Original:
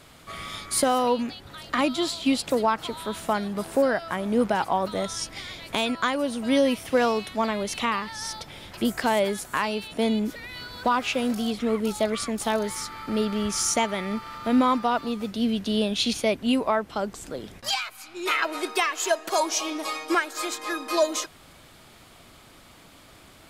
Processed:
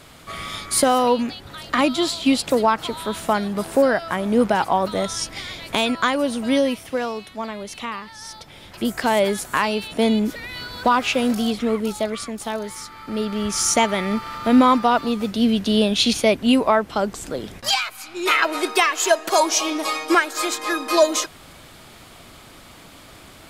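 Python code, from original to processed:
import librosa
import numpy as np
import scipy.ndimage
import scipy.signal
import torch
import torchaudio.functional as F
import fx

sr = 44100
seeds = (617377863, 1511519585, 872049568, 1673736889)

y = fx.gain(x, sr, db=fx.line((6.36, 5.0), (7.07, -4.0), (8.23, -4.0), (9.3, 5.5), (11.45, 5.5), (12.38, -2.0), (12.94, -2.0), (13.84, 6.5)))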